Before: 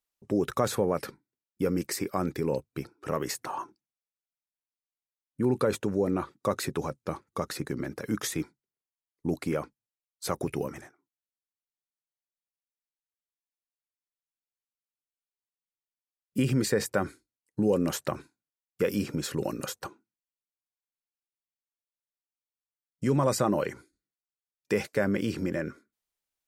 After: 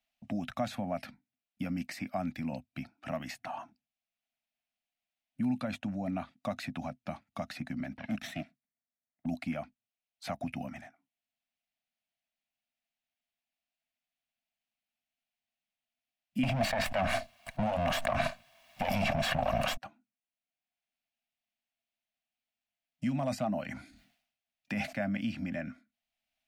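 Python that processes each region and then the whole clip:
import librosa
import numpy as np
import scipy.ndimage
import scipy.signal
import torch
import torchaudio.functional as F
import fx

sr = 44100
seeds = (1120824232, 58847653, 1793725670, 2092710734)

y = fx.chain(x, sr, fx.lower_of_two(delay_ms=0.53),
    fx.env_lowpass(base_hz=1300.0, full_db=-30.0),
    fx.highpass(hz=96.0, slope=12), at=(7.97, 9.26))
y = fx.chain(y, sr, fx.lower_of_two(delay_ms=1.8),
    fx.peak_eq(hz=970.0, db=8.5, octaves=1.1),
    fx.env_flatten(amount_pct=100), at=(16.43, 19.77))
y = fx.chain(y, sr, fx.dynamic_eq(hz=3000.0, q=0.81, threshold_db=-43.0, ratio=4.0, max_db=-4),
    fx.clip_hard(threshold_db=-14.5),
    fx.sustainer(db_per_s=90.0), at=(23.13, 24.97))
y = fx.curve_eq(y, sr, hz=(160.0, 250.0, 420.0, 670.0, 1000.0, 2600.0, 7800.0), db=(0, 9, -29, 12, -6, 8, -9))
y = fx.band_squash(y, sr, depth_pct=40)
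y = y * librosa.db_to_amplitude(-8.5)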